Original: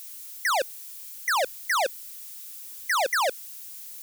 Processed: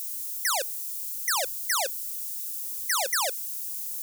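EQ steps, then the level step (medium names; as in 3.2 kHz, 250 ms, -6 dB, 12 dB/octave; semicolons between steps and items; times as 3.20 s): tone controls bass -14 dB, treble +13 dB; -5.5 dB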